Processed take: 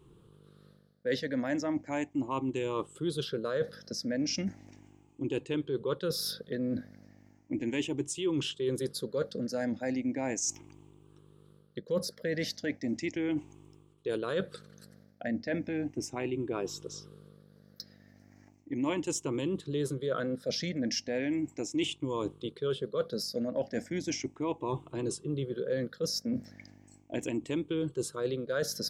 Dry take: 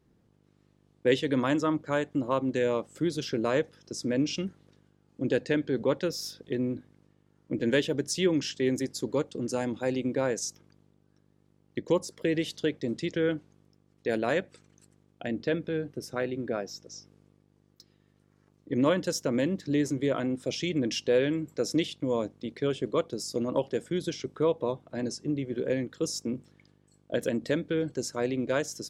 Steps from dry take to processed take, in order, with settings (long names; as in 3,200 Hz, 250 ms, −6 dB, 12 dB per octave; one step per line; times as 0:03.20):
rippled gain that drifts along the octave scale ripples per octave 0.66, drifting +0.36 Hz, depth 14 dB
reversed playback
downward compressor 4 to 1, threshold −37 dBFS, peak gain reduction 18.5 dB
reversed playback
level +5.5 dB